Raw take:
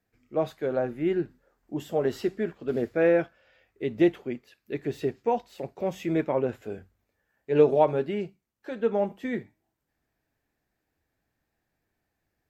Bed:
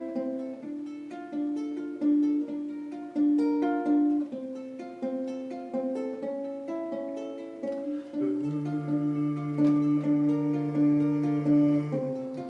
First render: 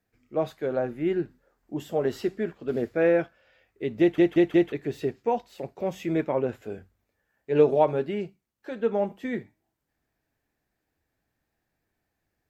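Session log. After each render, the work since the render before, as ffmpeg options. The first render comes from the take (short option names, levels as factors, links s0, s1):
-filter_complex "[0:a]asplit=5[s0][s1][s2][s3][s4];[s0]atrim=end=4.182[s5];[s1]atrim=start=3.998:end=4.182[s6];[s2]atrim=start=3.998:end=4.182[s7];[s3]atrim=start=3.998:end=4.182[s8];[s4]atrim=start=4.718[s9];[s5][s6]acrossfade=d=0.004:c1=hsin:c2=hsin[s10];[s10][s7]acrossfade=d=0.004:c1=hsin:c2=hsin[s11];[s11][s8]acrossfade=d=0.004:c1=hsin:c2=hsin[s12];[s12][s9]acrossfade=d=0.004:c1=hsin:c2=hsin"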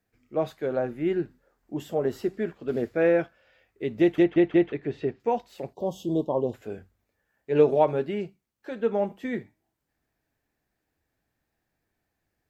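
-filter_complex "[0:a]asettb=1/sr,asplit=3[s0][s1][s2];[s0]atrim=end=1.944[s3];[s1]atrim=start=1.94:end=2.34,asetpts=PTS-STARTPTS,afade=t=in:d=0.004:c=qsin,afade=t=out:st=0.396:d=0.004:c=qsin,equalizer=f=3300:t=o:w=2.2:g=-6[s4];[s2]atrim=start=2.336[s5];[s3][s4]acrossfade=d=0.004:c1=hsin:c2=qsin[s6];[s6][s5]acrossfade=d=0.004:c1=qsin:c2=hsin,asettb=1/sr,asplit=3[s7][s8][s9];[s7]atrim=end=4.234[s10];[s8]atrim=start=4.23:end=5.2,asetpts=PTS-STARTPTS,afade=t=in:d=0.004:c=qsin,afade=t=out:st=0.966:d=0.004:c=qsin,lowpass=3200[s11];[s9]atrim=start=5.196[s12];[s10][s11]acrossfade=d=0.004:c1=hsin:c2=qsin[s13];[s13][s12]acrossfade=d=0.004:c1=qsin:c2=hsin,asettb=1/sr,asplit=3[s14][s15][s16];[s14]atrim=end=5.734[s17];[s15]atrim=start=5.73:end=6.54,asetpts=PTS-STARTPTS,afade=t=in:d=0.004:c=qsin,afade=t=out:st=0.806:d=0.004:c=qsin,asuperstop=centerf=1800:order=20:qfactor=1[s18];[s16]atrim=start=6.536[s19];[s17][s18]acrossfade=d=0.004:c1=hsin:c2=qsin[s20];[s20][s19]acrossfade=d=0.004:c1=qsin:c2=hsin"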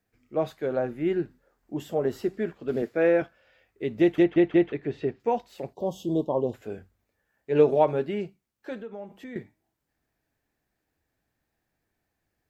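-filter_complex "[0:a]asettb=1/sr,asplit=3[s0][s1][s2];[s0]atrim=end=2.824[s3];[s1]atrim=start=2.82:end=3.22,asetpts=PTS-STARTPTS,afade=t=in:d=0.004:c=qsin,afade=t=out:st=0.396:d=0.004:c=qsin,highpass=170[s4];[s2]atrim=start=3.216[s5];[s3][s4]acrossfade=d=0.004:c1=hsin:c2=qsin[s6];[s6][s5]acrossfade=d=0.004:c1=qsin:c2=hsin,asettb=1/sr,asplit=3[s7][s8][s9];[s7]atrim=end=8.824[s10];[s8]atrim=start=8.82:end=9.36,asetpts=PTS-STARTPTS,afade=t=in:d=0.004:c=qsin,afade=t=out:st=0.536:d=0.004:c=qsin,acompressor=threshold=0.00794:ratio=2.5:attack=3.2:release=140:knee=1:detection=peak[s11];[s9]atrim=start=9.356[s12];[s10][s11]acrossfade=d=0.004:c1=hsin:c2=qsin[s13];[s13][s12]acrossfade=d=0.004:c1=qsin:c2=hsin"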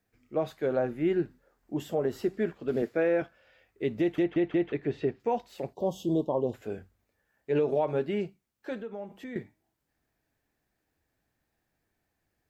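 -af "alimiter=limit=0.126:level=0:latency=1:release=154"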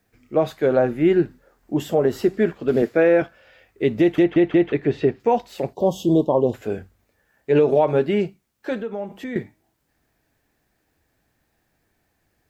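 -af "volume=3.16"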